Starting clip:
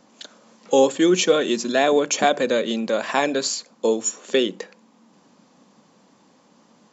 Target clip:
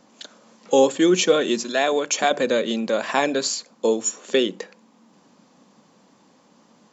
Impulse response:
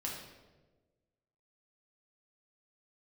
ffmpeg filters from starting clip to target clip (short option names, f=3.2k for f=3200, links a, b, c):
-filter_complex "[0:a]asettb=1/sr,asplit=3[a][b][c];[a]atrim=end=1.634[d];[b]atrim=start=1.63:end=2.31,asetpts=PTS-STARTPTS,afade=t=in:d=0.004:c=qsin,afade=t=out:st=0.676:d=0.004:c=qsin,lowshelf=f=380:g=-9.5[e];[c]atrim=start=2.306[f];[d][e]acrossfade=d=0.004:c1=hsin:c2=qsin[g];[g][f]acrossfade=d=0.004:c1=qsin:c2=hsin"